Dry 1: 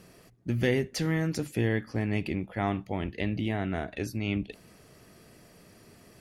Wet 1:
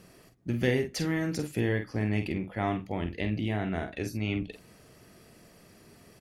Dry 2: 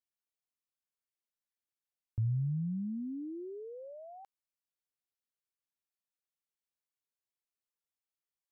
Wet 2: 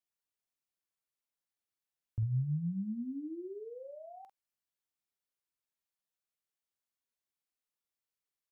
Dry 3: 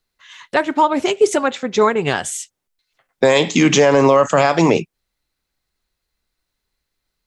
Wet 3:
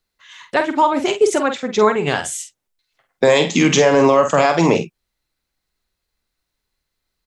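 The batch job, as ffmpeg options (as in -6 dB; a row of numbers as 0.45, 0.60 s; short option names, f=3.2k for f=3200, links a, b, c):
-filter_complex "[0:a]asplit=2[a][b];[b]adelay=47,volume=-8dB[c];[a][c]amix=inputs=2:normalize=0,volume=-1dB"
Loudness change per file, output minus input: -0.5, -0.5, -0.5 LU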